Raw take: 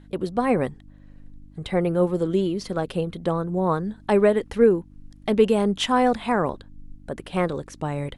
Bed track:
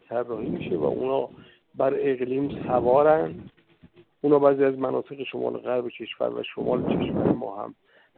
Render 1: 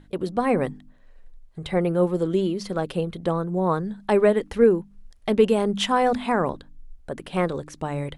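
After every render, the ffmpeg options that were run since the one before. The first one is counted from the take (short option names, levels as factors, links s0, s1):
-af "bandreject=f=50:t=h:w=4,bandreject=f=100:t=h:w=4,bandreject=f=150:t=h:w=4,bandreject=f=200:t=h:w=4,bandreject=f=250:t=h:w=4,bandreject=f=300:t=h:w=4"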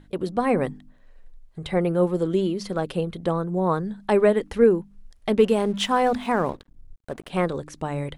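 -filter_complex "[0:a]asettb=1/sr,asplit=3[s0][s1][s2];[s0]atrim=end=5.384[s3];[s1]atrim=start=5.38:end=7.3,asetpts=PTS-STARTPTS,afade=t=in:d=0.004:c=qsin,afade=t=out:st=1.916:d=0.004:c=qsin,aeval=exprs='sgn(val(0))*max(abs(val(0))-0.00501,0)':c=same[s4];[s2]atrim=start=7.296[s5];[s3][s4]acrossfade=d=0.004:c1=hsin:c2=qsin[s6];[s6][s5]acrossfade=d=0.004:c1=qsin:c2=hsin"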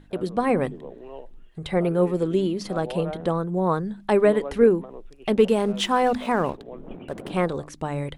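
-filter_complex "[1:a]volume=0.168[s0];[0:a][s0]amix=inputs=2:normalize=0"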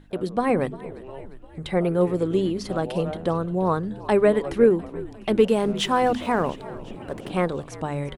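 -filter_complex "[0:a]asplit=7[s0][s1][s2][s3][s4][s5][s6];[s1]adelay=351,afreqshift=-64,volume=0.126[s7];[s2]adelay=702,afreqshift=-128,volume=0.0776[s8];[s3]adelay=1053,afreqshift=-192,volume=0.0484[s9];[s4]adelay=1404,afreqshift=-256,volume=0.0299[s10];[s5]adelay=1755,afreqshift=-320,volume=0.0186[s11];[s6]adelay=2106,afreqshift=-384,volume=0.0115[s12];[s0][s7][s8][s9][s10][s11][s12]amix=inputs=7:normalize=0"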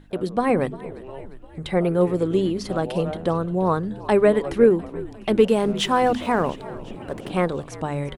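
-af "volume=1.19"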